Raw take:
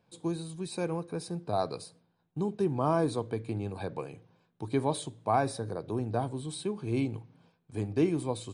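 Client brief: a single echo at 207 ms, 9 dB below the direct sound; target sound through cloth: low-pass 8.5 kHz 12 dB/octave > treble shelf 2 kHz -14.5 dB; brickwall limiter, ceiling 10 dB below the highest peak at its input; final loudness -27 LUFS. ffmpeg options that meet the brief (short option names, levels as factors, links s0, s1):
-af "alimiter=limit=0.0668:level=0:latency=1,lowpass=8500,highshelf=f=2000:g=-14.5,aecho=1:1:207:0.355,volume=2.99"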